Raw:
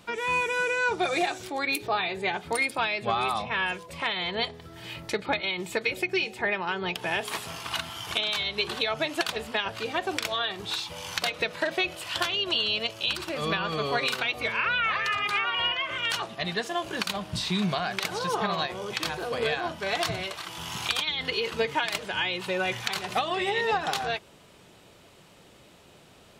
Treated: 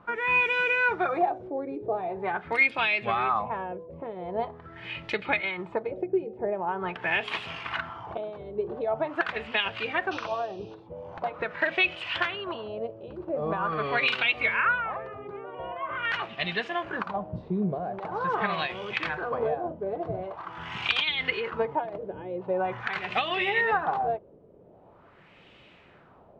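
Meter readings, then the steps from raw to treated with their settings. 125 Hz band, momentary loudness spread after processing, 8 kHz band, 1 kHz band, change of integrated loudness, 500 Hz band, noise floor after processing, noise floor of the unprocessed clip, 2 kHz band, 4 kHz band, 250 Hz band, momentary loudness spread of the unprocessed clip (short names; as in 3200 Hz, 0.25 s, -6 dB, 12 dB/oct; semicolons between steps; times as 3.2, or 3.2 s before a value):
-1.5 dB, 13 LU, under -20 dB, +0.5 dB, -0.5 dB, +1.0 dB, -55 dBFS, -54 dBFS, +0.5 dB, -6.5 dB, -0.5 dB, 6 LU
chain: painted sound noise, 10.11–10.75, 2400–6300 Hz -24 dBFS; LFO low-pass sine 0.44 Hz 460–2800 Hz; gain -2 dB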